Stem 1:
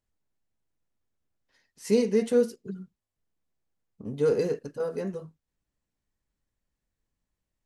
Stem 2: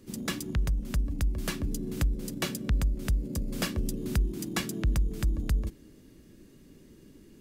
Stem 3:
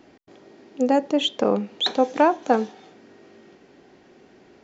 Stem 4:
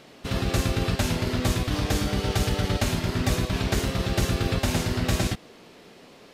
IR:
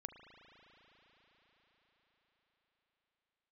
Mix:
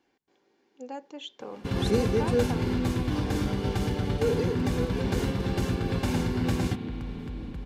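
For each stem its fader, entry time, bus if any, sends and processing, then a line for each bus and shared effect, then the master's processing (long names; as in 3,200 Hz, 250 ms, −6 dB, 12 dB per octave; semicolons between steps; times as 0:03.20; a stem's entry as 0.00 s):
−3.0 dB, 0.00 s, no bus, no send, no processing
−1.5 dB, 2.05 s, bus A, no send, brickwall limiter −26 dBFS, peak gain reduction 9.5 dB
−14.0 dB, 0.00 s, no bus, no send, low-shelf EQ 390 Hz −11.5 dB
+2.0 dB, 1.40 s, bus A, send −4 dB, amplitude modulation by smooth noise, depth 55%
bus A: 0.0 dB, low-pass filter 1,000 Hz 6 dB per octave; brickwall limiter −21 dBFS, peak gain reduction 9 dB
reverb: on, RT60 5.9 s, pre-delay 36 ms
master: notch comb filter 640 Hz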